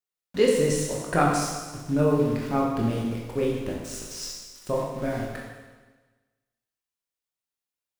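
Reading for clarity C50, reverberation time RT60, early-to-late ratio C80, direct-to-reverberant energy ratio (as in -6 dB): 1.0 dB, 1.3 s, 3.5 dB, -3.0 dB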